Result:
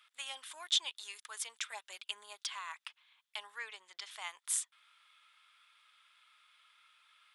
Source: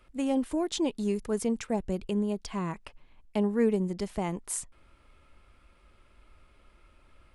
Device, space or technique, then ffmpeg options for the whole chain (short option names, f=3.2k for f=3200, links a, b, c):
headphones lying on a table: -filter_complex "[0:a]asettb=1/sr,asplit=3[a][b][c];[a]atrim=end=3.584[d];[b]atrim=start=3.58:end=4.11,asetpts=PTS-STARTPTS,afade=t=in:d=0.004:c=qsin,afade=t=out:st=0.526:d=0.004:c=qsin,lowpass=6k[e];[c]atrim=start=4.106[f];[d][e]acrossfade=d=0.004:c1=hsin:c2=qsin[g];[g][f]acrossfade=d=0.004:c1=qsin:c2=hsin,highpass=f=1.2k:w=0.5412,highpass=f=1.2k:w=1.3066,equalizer=f=3.5k:t=o:w=0.32:g=11,asettb=1/sr,asplit=3[h][i][j];[h]atrim=end=1.664[k];[i]atrim=start=1.66:end=2.5,asetpts=PTS-STARTPTS,afade=t=in:d=0.004:c=qsin,afade=t=out:st=0.836:d=0.004:c=qsin,aecho=1:1:5:0.83,atrim=end_sample=37044[l];[j]atrim=start=2.496[m];[k][l]acrossfade=d=0.004:c1=hsin:c2=qsin[n];[n][m]acrossfade=d=0.004:c1=qsin:c2=hsin"